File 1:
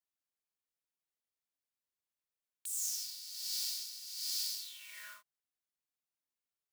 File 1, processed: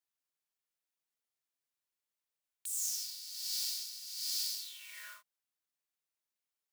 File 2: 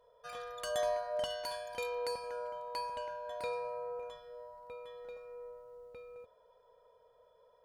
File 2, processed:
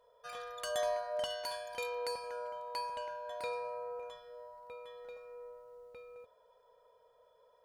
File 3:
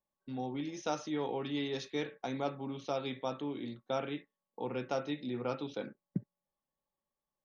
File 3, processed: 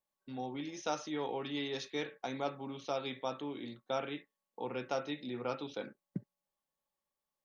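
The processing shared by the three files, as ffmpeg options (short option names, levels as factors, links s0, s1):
-af "lowshelf=f=390:g=-6.5,volume=1.12"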